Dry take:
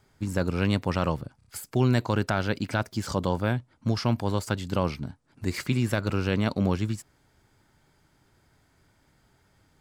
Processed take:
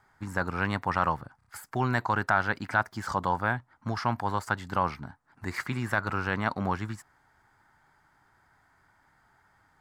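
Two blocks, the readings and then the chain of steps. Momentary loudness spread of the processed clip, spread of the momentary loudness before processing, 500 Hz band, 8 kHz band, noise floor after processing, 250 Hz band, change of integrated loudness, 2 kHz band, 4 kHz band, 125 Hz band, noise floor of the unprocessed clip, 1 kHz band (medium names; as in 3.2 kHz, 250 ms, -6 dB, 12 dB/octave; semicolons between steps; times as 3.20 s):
10 LU, 8 LU, -5.5 dB, -7.0 dB, -67 dBFS, -7.0 dB, -2.0 dB, +5.0 dB, -7.0 dB, -7.0 dB, -66 dBFS, +5.5 dB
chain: high-order bell 1.2 kHz +13 dB; trim -7 dB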